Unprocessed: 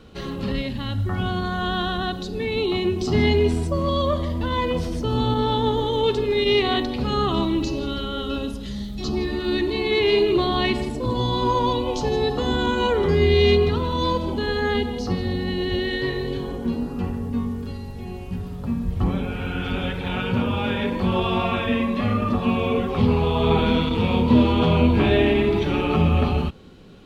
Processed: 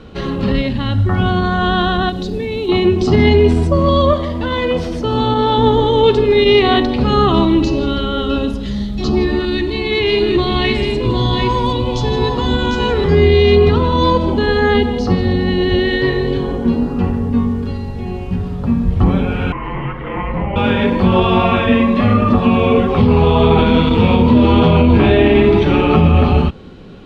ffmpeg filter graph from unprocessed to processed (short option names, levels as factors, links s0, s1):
-filter_complex "[0:a]asettb=1/sr,asplit=3[s0][s1][s2];[s0]atrim=end=2.094[s3];[s1]atrim=start=2.09:end=2.69,asetpts=PTS-STARTPTS,afade=t=in:d=0.004:c=qsin,afade=t=out:st=0.596:d=0.004:c=qsin,equalizer=f=1300:w=0.96:g=-6,acompressor=threshold=0.0501:ratio=20:attack=3.2:release=140:knee=1:detection=peak,acrusher=bits=6:mode=log:mix=0:aa=0.000001[s4];[s2]atrim=start=2.686[s5];[s3][s4]acrossfade=d=0.004:c1=hsin:c2=qsin[s6];[s6][s5]acrossfade=d=0.004:c1=qsin:c2=hsin,asettb=1/sr,asplit=3[s7][s8][s9];[s7]atrim=end=4.134[s10];[s8]atrim=start=4.13:end=5.58,asetpts=PTS-STARTPTS,afade=t=in:d=0.004:c=qsin,afade=t=out:st=1.446:d=0.004:c=qsin,lowshelf=f=240:g=-8.5,bandreject=f=1000:w=28[s11];[s9]atrim=start=5.576[s12];[s10][s11]acrossfade=d=0.004:c1=hsin:c2=qsin[s13];[s13][s12]acrossfade=d=0.004:c1=qsin:c2=hsin,asettb=1/sr,asplit=3[s14][s15][s16];[s14]atrim=end=9.454[s17];[s15]atrim=start=9.45:end=13.12,asetpts=PTS-STARTPTS,afade=t=in:d=0.004:c=qsin,afade=t=out:st=3.666:d=0.004:c=qsin,equalizer=f=600:w=0.4:g=-7.5,aecho=1:1:751:0.531,atrim=end_sample=161847[s18];[s16]atrim=start=13.116[s19];[s17][s18]acrossfade=d=0.004:c1=hsin:c2=qsin[s20];[s20][s19]acrossfade=d=0.004:c1=qsin:c2=hsin,asettb=1/sr,asplit=3[s21][s22][s23];[s21]atrim=end=19.524[s24];[s22]atrim=start=19.52:end=20.56,asetpts=PTS-STARTPTS,afade=t=in:d=0.004:c=qsin,afade=t=out:st=1.036:d=0.004:c=qsin,acrossover=split=310 2200:gain=0.0891 1 0.126[s25][s26][s27];[s25][s26][s27]amix=inputs=3:normalize=0,afreqshift=-410[s28];[s23]atrim=start=20.556[s29];[s24][s28]acrossfade=d=0.004:c1=hsin:c2=qsin[s30];[s30][s29]acrossfade=d=0.004:c1=qsin:c2=hsin,aemphasis=mode=reproduction:type=50fm,alimiter=level_in=3.35:limit=0.891:release=50:level=0:latency=1,volume=0.891"